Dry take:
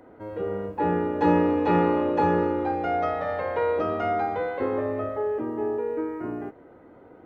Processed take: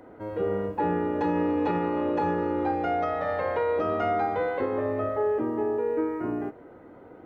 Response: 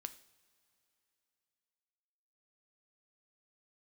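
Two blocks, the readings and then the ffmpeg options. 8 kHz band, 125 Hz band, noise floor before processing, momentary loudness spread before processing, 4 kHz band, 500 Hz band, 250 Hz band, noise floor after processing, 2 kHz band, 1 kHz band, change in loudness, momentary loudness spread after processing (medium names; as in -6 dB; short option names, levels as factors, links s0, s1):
no reading, -3.5 dB, -50 dBFS, 10 LU, -2.0 dB, -1.0 dB, -2.0 dB, -49 dBFS, -1.5 dB, -2.0 dB, -2.0 dB, 3 LU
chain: -filter_complex "[0:a]alimiter=limit=0.112:level=0:latency=1:release=366,asplit=2[s0][s1];[1:a]atrim=start_sample=2205[s2];[s1][s2]afir=irnorm=-1:irlink=0,volume=1[s3];[s0][s3]amix=inputs=2:normalize=0,volume=0.75"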